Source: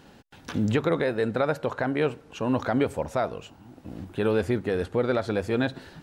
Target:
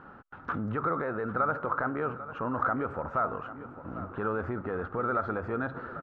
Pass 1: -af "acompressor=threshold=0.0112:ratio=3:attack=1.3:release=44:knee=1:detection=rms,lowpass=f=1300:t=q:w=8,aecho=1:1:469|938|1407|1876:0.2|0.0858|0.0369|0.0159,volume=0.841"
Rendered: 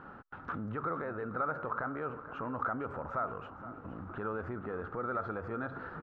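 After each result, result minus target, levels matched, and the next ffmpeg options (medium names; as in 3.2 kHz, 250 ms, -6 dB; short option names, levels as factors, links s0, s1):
echo 328 ms early; compression: peak gain reduction +6 dB
-af "acompressor=threshold=0.0112:ratio=3:attack=1.3:release=44:knee=1:detection=rms,lowpass=f=1300:t=q:w=8,aecho=1:1:797|1594|2391|3188:0.2|0.0858|0.0369|0.0159,volume=0.841"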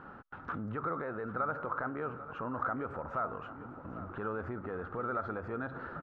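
compression: peak gain reduction +6 dB
-af "acompressor=threshold=0.0316:ratio=3:attack=1.3:release=44:knee=1:detection=rms,lowpass=f=1300:t=q:w=8,aecho=1:1:797|1594|2391|3188:0.2|0.0858|0.0369|0.0159,volume=0.841"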